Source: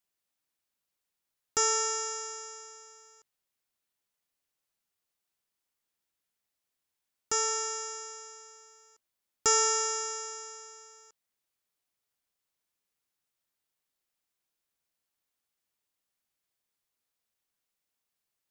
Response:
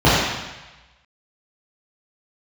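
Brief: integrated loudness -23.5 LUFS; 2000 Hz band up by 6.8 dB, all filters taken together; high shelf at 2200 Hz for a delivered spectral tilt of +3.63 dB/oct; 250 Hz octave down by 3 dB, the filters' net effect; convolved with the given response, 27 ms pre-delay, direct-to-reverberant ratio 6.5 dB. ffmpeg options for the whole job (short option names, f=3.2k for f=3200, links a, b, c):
-filter_complex "[0:a]equalizer=f=250:t=o:g=-5,equalizer=f=2k:t=o:g=3.5,highshelf=f=2.2k:g=8.5,asplit=2[a][b];[1:a]atrim=start_sample=2205,adelay=27[c];[b][c]afir=irnorm=-1:irlink=0,volume=-33.5dB[d];[a][d]amix=inputs=2:normalize=0,volume=-2dB"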